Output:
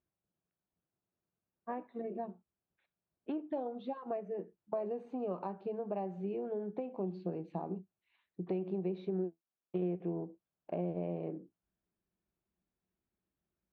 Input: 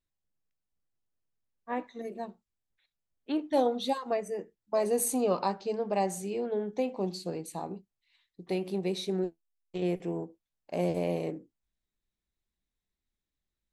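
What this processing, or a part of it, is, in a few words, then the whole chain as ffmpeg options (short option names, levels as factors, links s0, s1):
bass amplifier: -af "acompressor=threshold=0.00891:ratio=5,highpass=74,equalizer=f=180:t=q:w=4:g=7,equalizer=f=360:t=q:w=4:g=6,equalizer=f=660:t=q:w=4:g=4,equalizer=f=2000:t=q:w=4:g=-9,lowpass=f=2400:w=0.5412,lowpass=f=2400:w=1.3066,volume=1.26"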